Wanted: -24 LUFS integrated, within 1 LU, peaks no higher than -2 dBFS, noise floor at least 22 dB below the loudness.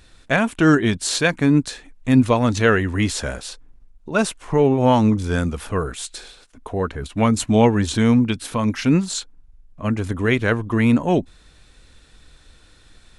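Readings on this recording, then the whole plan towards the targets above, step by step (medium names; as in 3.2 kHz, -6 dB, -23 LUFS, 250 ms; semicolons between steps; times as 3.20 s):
loudness -19.5 LUFS; peak level -2.5 dBFS; loudness target -24.0 LUFS
-> trim -4.5 dB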